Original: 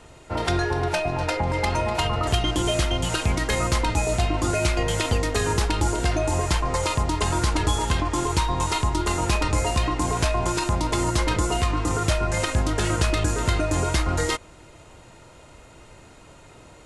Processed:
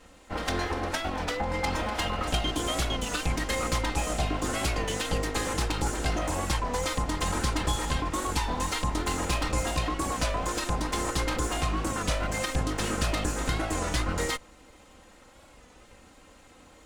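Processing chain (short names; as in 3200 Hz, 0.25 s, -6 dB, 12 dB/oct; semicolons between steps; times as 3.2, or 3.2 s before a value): minimum comb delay 3.8 ms; record warp 33 1/3 rpm, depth 100 cents; gain -4 dB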